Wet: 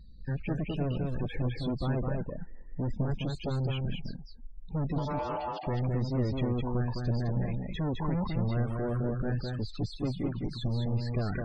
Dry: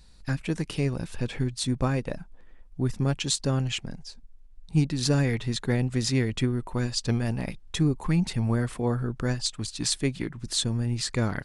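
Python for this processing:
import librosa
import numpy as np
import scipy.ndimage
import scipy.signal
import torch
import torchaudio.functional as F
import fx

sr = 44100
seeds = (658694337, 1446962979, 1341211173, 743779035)

y = fx.high_shelf(x, sr, hz=5900.0, db=-9.0, at=(6.21, 6.96))
y = np.clip(y, -10.0 ** (-32.0 / 20.0), 10.0 ** (-32.0 / 20.0))
y = fx.spec_topn(y, sr, count=32)
y = fx.ring_mod(y, sr, carrier_hz=740.0, at=(4.98, 5.67))
y = fx.spacing_loss(y, sr, db_at_10k=27)
y = y + 10.0 ** (-3.5 / 20.0) * np.pad(y, (int(209 * sr / 1000.0), 0))[:len(y)]
y = F.gain(torch.from_numpy(y), 4.0).numpy()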